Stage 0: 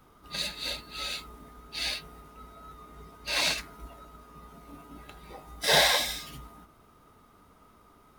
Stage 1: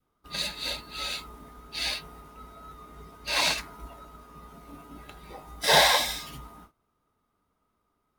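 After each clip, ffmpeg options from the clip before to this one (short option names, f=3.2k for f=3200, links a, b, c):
-af "agate=range=-19dB:threshold=-53dB:ratio=16:detection=peak,adynamicequalizer=threshold=0.00355:dfrequency=940:dqfactor=2.6:tfrequency=940:tqfactor=2.6:attack=5:release=100:ratio=0.375:range=3:mode=boostabove:tftype=bell,volume=1.5dB"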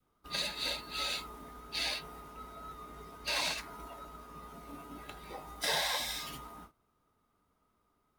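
-filter_complex "[0:a]acrossover=split=250|1000|3400[a][b][c][d];[a]acompressor=threshold=-53dB:ratio=4[e];[b]acompressor=threshold=-42dB:ratio=4[f];[c]acompressor=threshold=-38dB:ratio=4[g];[d]acompressor=threshold=-37dB:ratio=4[h];[e][f][g][h]amix=inputs=4:normalize=0"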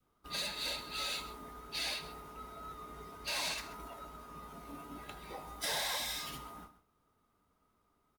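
-filter_complex "[0:a]acrossover=split=6700[a][b];[a]asoftclip=type=tanh:threshold=-33dB[c];[c][b]amix=inputs=2:normalize=0,aecho=1:1:132:0.178"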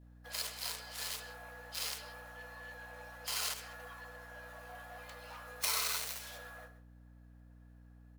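-af "aeval=exprs='0.0531*(cos(1*acos(clip(val(0)/0.0531,-1,1)))-cos(1*PI/2))+0.00944*(cos(2*acos(clip(val(0)/0.0531,-1,1)))-cos(2*PI/2))+0.0168*(cos(3*acos(clip(val(0)/0.0531,-1,1)))-cos(3*PI/2))+0.00237*(cos(4*acos(clip(val(0)/0.0531,-1,1)))-cos(4*PI/2))+0.00266*(cos(7*acos(clip(val(0)/0.0531,-1,1)))-cos(7*PI/2))':c=same,afreqshift=440,aeval=exprs='val(0)+0.000501*(sin(2*PI*60*n/s)+sin(2*PI*2*60*n/s)/2+sin(2*PI*3*60*n/s)/3+sin(2*PI*4*60*n/s)/4+sin(2*PI*5*60*n/s)/5)':c=same,volume=10dB"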